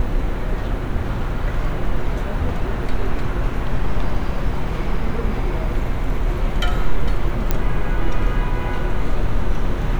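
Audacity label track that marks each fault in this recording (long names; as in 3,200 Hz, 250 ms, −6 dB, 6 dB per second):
7.510000	7.510000	click −5 dBFS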